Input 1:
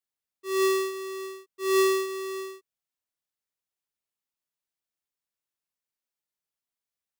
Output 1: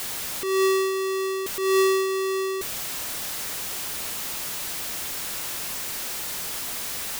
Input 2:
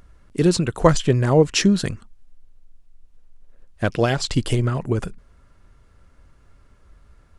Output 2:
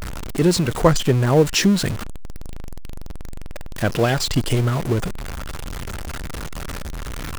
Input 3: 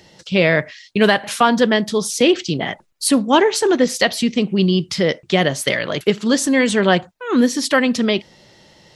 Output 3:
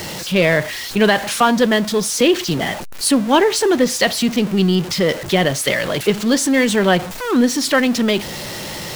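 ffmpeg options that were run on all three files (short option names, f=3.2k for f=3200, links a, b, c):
-af "aeval=exprs='val(0)+0.5*0.0794*sgn(val(0))':c=same,volume=-1dB"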